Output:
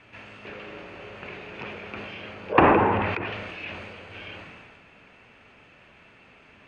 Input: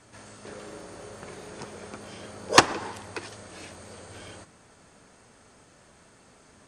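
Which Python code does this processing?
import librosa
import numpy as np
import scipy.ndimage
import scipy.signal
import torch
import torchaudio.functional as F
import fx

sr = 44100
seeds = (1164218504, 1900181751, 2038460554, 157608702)

y = fx.lowpass_res(x, sr, hz=2600.0, q=5.2)
y = fx.env_lowpass_down(y, sr, base_hz=960.0, full_db=-26.0)
y = fx.sustainer(y, sr, db_per_s=27.0)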